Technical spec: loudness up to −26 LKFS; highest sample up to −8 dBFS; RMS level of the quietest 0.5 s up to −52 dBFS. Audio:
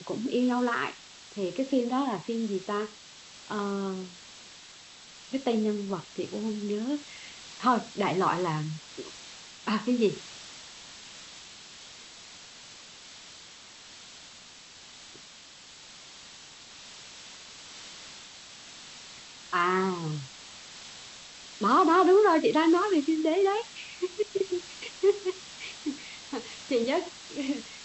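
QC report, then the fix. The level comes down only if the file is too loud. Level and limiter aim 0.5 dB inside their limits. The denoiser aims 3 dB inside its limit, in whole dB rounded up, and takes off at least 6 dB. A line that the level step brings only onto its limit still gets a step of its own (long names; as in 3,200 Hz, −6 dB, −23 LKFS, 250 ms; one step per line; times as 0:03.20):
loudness −28.5 LKFS: in spec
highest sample −12.0 dBFS: in spec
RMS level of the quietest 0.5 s −50 dBFS: out of spec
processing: broadband denoise 6 dB, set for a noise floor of −50 dBFS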